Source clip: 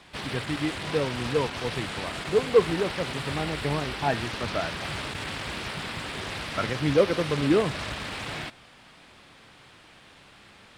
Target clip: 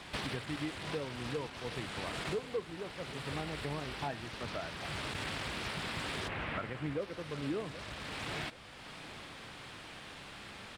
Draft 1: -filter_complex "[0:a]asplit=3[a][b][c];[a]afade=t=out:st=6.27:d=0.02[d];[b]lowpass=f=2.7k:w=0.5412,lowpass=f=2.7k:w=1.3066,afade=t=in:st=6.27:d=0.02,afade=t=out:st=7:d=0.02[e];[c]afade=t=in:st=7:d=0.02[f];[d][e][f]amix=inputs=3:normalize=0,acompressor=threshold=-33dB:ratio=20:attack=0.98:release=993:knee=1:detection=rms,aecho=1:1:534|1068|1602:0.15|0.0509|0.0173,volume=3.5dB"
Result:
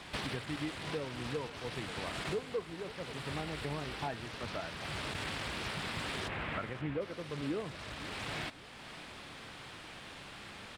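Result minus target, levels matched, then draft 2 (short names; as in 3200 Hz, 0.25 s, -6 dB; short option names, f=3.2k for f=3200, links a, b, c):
echo 0.242 s early
-filter_complex "[0:a]asplit=3[a][b][c];[a]afade=t=out:st=6.27:d=0.02[d];[b]lowpass=f=2.7k:w=0.5412,lowpass=f=2.7k:w=1.3066,afade=t=in:st=6.27:d=0.02,afade=t=out:st=7:d=0.02[e];[c]afade=t=in:st=7:d=0.02[f];[d][e][f]amix=inputs=3:normalize=0,acompressor=threshold=-33dB:ratio=20:attack=0.98:release=993:knee=1:detection=rms,aecho=1:1:776|1552|2328:0.15|0.0509|0.0173,volume=3.5dB"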